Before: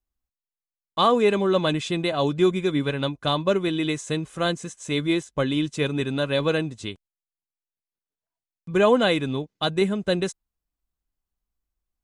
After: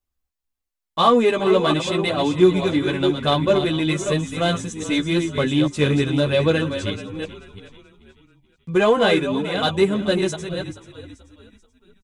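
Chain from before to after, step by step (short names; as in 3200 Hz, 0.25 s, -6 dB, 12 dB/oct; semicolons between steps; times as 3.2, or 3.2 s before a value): reverse delay 0.345 s, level -8 dB; frequency-shifting echo 0.434 s, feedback 40%, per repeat -44 Hz, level -15 dB; chorus voices 2, 0.42 Hz, delay 12 ms, depth 1.9 ms; in parallel at -8 dB: soft clip -24.5 dBFS, distortion -8 dB; on the sum: gain +4 dB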